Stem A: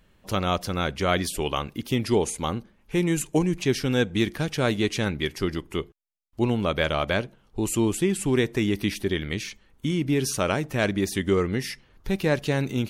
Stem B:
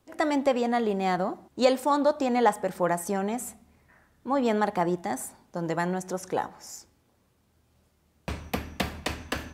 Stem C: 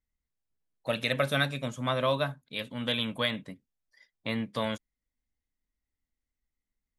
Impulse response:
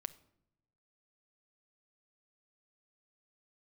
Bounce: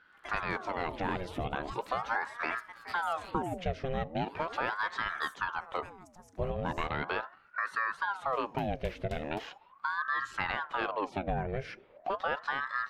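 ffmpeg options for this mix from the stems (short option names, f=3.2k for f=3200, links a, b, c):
-filter_complex "[0:a]lowpass=2.1k,acompressor=threshold=-29dB:ratio=3,volume=0.5dB,asplit=2[a][b];[1:a]adelay=50,volume=-18.5dB[c];[2:a]highshelf=f=3.1k:g=8.5,asoftclip=type=hard:threshold=-19.5dB,volume=-17dB[d];[b]apad=whole_len=308171[e];[d][e]sidechaincompress=threshold=-42dB:ratio=8:attack=16:release=171[f];[a][c][f]amix=inputs=3:normalize=0,bandreject=f=181.8:t=h:w=4,bandreject=f=363.6:t=h:w=4,bandreject=f=545.4:t=h:w=4,bandreject=f=727.2:t=h:w=4,aeval=exprs='val(0)*sin(2*PI*880*n/s+880*0.7/0.39*sin(2*PI*0.39*n/s))':c=same"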